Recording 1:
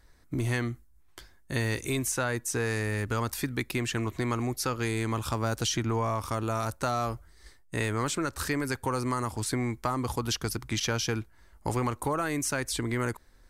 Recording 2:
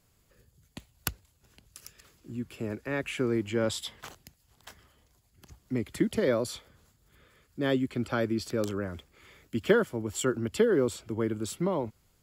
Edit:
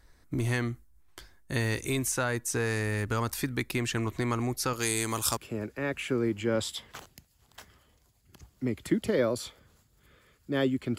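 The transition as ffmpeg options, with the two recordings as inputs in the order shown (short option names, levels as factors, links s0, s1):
-filter_complex "[0:a]asettb=1/sr,asplit=3[s0][s1][s2];[s0]atrim=end=4.734[s3];[s1]atrim=start=4.73:end=5.37,asetpts=PTS-STARTPTS,afade=t=in:d=0.004:c=qsin,afade=t=out:st=0.636:d=0.004:c=qsin,bass=f=250:g=-6,treble=f=4000:g=14[s4];[s2]atrim=start=5.366[s5];[s3][s4]acrossfade=d=0.004:c1=hsin:c2=qsin[s6];[s6][s5]acrossfade=d=0.004:c1=qsin:c2=hsin,apad=whole_dur=10.98,atrim=end=10.98,atrim=end=5.372[s7];[1:a]atrim=start=2.458:end=8.07[s8];[s7][s8]acrossfade=d=0.004:c1=hsin:c2=hsin"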